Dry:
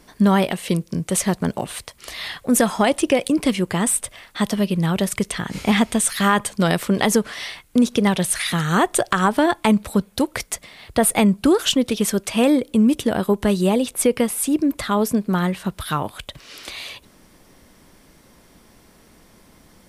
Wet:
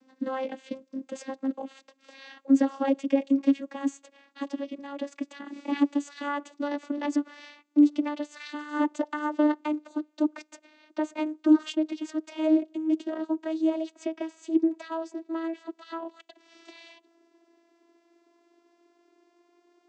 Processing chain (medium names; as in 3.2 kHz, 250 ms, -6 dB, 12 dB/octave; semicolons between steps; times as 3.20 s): vocoder on a note that slides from C4, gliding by +5 st; trim -7.5 dB